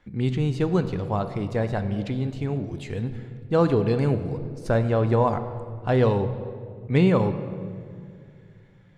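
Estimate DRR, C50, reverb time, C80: 9.5 dB, 11.0 dB, 2.3 s, 12.0 dB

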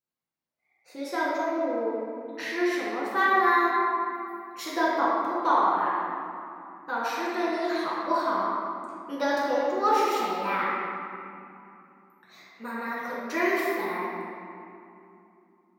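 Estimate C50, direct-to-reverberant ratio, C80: -2.5 dB, -7.0 dB, -0.5 dB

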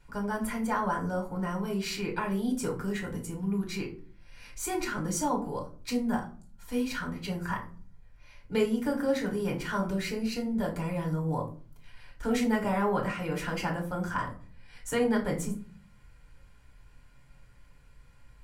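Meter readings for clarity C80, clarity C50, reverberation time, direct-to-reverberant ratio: 15.5 dB, 10.5 dB, 0.45 s, -1.5 dB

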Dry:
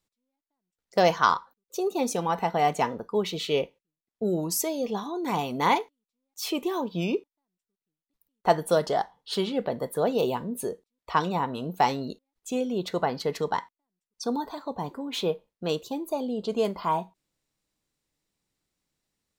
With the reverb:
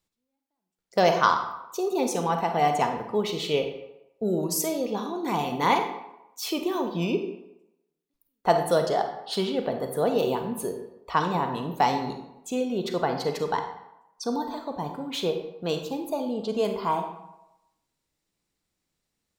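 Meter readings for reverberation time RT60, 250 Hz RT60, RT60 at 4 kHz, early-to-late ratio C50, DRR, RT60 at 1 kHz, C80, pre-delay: 0.90 s, 0.75 s, 0.60 s, 7.0 dB, 5.5 dB, 0.90 s, 9.5 dB, 35 ms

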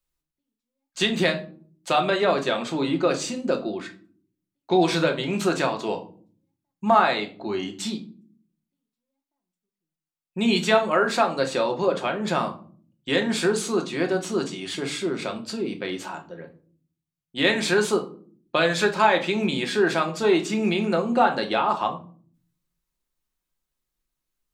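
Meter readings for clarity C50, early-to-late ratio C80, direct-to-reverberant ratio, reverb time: 13.5 dB, 18.5 dB, 3.0 dB, not exponential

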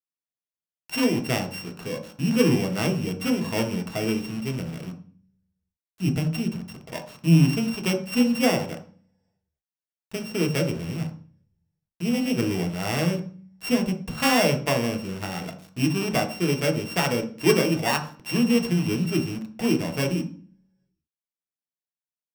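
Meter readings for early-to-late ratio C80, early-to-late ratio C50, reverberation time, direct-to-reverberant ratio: 15.0 dB, 10.5 dB, 0.45 s, 3.5 dB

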